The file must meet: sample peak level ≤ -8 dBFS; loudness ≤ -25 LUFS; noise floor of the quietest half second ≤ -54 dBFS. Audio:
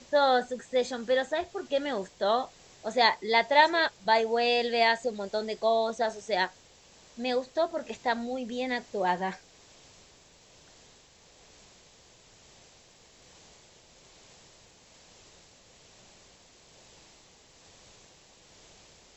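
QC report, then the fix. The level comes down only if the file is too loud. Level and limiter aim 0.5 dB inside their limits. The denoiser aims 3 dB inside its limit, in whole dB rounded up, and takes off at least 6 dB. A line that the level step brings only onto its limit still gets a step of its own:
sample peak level -9.0 dBFS: pass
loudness -28.0 LUFS: pass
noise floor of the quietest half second -58 dBFS: pass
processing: none needed

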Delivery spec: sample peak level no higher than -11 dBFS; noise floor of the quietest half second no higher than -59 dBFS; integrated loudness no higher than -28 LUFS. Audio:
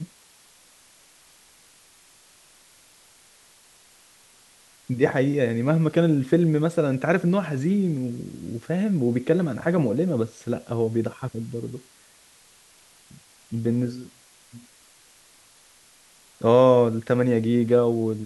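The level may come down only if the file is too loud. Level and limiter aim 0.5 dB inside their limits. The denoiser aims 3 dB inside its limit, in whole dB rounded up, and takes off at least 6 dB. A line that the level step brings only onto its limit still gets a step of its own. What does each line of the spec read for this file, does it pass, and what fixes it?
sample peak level -5.0 dBFS: fail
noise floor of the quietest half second -55 dBFS: fail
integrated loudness -23.0 LUFS: fail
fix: trim -5.5 dB; peak limiter -11.5 dBFS

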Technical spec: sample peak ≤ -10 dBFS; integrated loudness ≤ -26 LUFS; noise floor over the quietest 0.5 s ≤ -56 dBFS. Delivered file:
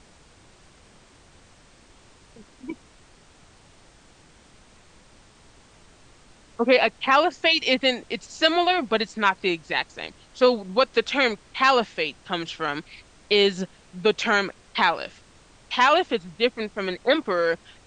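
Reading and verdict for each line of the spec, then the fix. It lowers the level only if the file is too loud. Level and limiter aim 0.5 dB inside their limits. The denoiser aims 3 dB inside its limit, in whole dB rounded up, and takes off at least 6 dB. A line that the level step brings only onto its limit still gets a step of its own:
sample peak -5.5 dBFS: fail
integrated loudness -22.5 LUFS: fail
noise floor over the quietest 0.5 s -53 dBFS: fail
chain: trim -4 dB; peak limiter -10.5 dBFS

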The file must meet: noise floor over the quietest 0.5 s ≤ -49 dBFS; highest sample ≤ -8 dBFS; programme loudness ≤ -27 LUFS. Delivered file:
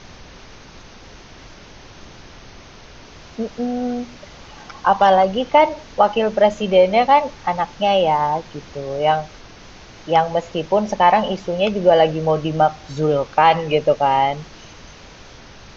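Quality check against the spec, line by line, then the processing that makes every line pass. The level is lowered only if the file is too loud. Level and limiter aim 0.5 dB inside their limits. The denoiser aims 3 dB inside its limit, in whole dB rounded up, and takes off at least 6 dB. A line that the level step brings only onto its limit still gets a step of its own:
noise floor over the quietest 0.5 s -41 dBFS: fail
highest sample -3.0 dBFS: fail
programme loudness -17.5 LUFS: fail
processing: trim -10 dB

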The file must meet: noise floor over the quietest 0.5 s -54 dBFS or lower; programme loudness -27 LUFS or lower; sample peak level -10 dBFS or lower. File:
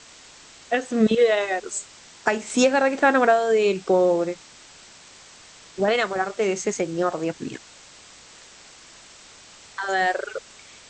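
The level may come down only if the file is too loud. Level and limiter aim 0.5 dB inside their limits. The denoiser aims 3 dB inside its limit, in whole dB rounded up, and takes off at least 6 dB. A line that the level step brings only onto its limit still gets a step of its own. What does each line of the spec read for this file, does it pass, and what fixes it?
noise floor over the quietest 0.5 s -48 dBFS: fail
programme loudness -22.0 LUFS: fail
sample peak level -6.5 dBFS: fail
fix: noise reduction 6 dB, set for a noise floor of -48 dBFS; trim -5.5 dB

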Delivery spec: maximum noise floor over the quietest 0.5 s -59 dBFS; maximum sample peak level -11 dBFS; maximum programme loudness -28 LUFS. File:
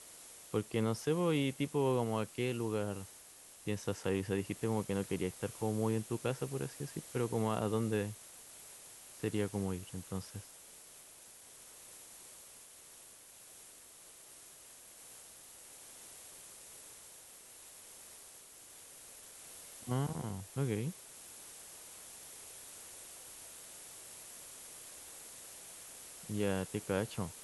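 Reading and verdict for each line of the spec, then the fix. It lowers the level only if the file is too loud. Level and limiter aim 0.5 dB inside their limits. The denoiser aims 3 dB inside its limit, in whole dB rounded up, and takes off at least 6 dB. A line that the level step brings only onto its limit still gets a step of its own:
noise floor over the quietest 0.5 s -56 dBFS: fail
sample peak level -20.5 dBFS: pass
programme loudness -38.5 LUFS: pass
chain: noise reduction 6 dB, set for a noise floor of -56 dBFS

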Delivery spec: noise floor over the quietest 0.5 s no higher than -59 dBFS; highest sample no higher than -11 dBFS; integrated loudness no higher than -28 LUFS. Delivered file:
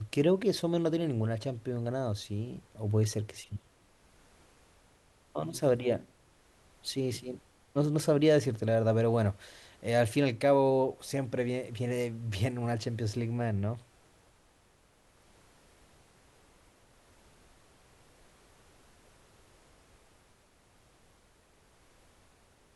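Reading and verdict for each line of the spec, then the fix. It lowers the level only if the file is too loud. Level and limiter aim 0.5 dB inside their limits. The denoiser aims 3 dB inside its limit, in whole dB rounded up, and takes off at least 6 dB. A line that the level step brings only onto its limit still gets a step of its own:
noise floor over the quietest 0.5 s -65 dBFS: pass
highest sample -14.0 dBFS: pass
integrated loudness -31.0 LUFS: pass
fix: none needed

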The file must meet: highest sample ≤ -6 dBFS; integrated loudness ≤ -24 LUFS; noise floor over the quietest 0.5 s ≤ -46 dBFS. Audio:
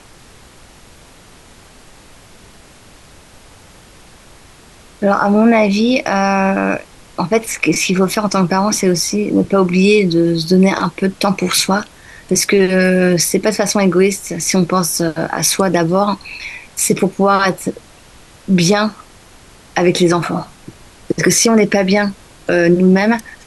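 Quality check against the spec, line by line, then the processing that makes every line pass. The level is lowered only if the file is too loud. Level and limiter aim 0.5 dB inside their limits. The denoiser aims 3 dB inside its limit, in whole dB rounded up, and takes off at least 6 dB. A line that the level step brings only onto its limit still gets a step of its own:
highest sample -2.0 dBFS: fail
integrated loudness -14.0 LUFS: fail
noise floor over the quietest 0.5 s -42 dBFS: fail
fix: trim -10.5 dB

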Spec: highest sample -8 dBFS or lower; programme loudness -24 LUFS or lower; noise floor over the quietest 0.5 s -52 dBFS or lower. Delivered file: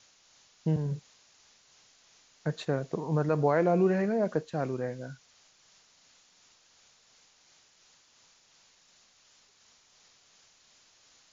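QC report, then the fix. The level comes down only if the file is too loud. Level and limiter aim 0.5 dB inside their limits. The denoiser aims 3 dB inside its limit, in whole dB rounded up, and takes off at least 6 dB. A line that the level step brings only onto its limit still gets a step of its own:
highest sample -14.0 dBFS: pass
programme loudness -29.5 LUFS: pass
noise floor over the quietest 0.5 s -63 dBFS: pass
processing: none needed

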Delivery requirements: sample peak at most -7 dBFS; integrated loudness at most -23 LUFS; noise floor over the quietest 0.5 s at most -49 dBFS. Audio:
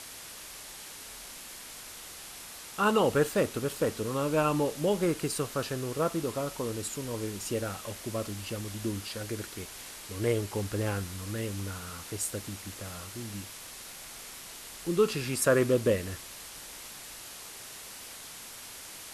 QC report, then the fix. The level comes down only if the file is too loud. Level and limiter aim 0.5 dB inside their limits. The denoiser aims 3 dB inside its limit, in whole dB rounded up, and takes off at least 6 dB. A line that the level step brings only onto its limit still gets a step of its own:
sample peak -12.0 dBFS: pass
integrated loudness -32.5 LUFS: pass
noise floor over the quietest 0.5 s -45 dBFS: fail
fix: noise reduction 7 dB, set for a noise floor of -45 dBFS

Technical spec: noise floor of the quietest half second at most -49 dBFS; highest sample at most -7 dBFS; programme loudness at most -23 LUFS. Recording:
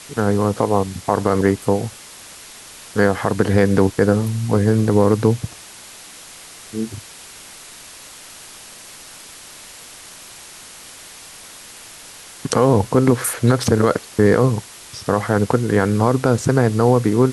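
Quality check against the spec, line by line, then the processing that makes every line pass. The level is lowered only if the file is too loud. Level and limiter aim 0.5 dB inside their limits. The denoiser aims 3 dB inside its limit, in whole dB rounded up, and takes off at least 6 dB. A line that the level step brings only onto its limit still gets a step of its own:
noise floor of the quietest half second -40 dBFS: fail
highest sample -2.5 dBFS: fail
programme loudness -18.0 LUFS: fail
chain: noise reduction 7 dB, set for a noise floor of -40 dBFS; trim -5.5 dB

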